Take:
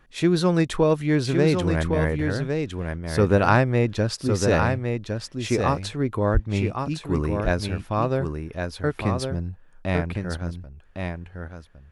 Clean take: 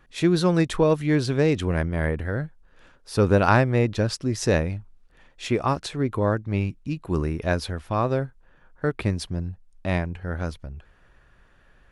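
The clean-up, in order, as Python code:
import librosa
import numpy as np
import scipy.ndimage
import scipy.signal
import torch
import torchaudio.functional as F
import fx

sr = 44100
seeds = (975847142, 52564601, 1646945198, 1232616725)

y = fx.highpass(x, sr, hz=140.0, slope=24, at=(6.33, 6.45), fade=0.02)
y = fx.fix_echo_inverse(y, sr, delay_ms=1109, level_db=-5.5)
y = fx.fix_level(y, sr, at_s=10.37, step_db=6.0)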